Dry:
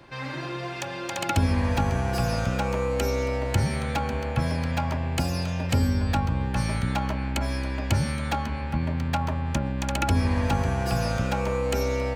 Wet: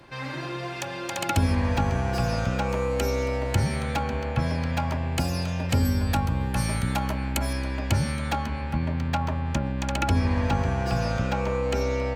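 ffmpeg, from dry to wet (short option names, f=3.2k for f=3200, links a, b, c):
-af "asetnsamples=n=441:p=0,asendcmd='1.55 equalizer g -7;2.69 equalizer g 0;4.03 equalizer g -8;4.77 equalizer g 1;5.85 equalizer g 12;7.53 equalizer g 1;8.79 equalizer g -6;10.19 equalizer g -13',equalizer=f=12k:t=o:w=0.89:g=3.5"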